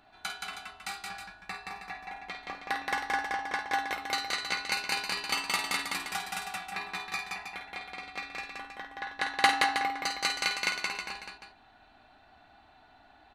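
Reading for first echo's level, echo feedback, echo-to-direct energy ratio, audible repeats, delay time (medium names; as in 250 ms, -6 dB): -8.5 dB, no regular repeats, -1.0 dB, 3, 51 ms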